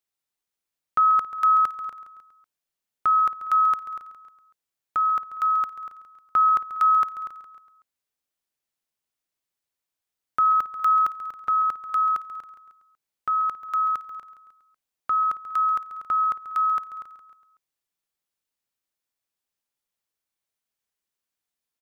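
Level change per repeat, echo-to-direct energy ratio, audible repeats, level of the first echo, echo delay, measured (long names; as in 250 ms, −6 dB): −4.5 dB, −12.0 dB, 4, −14.0 dB, 137 ms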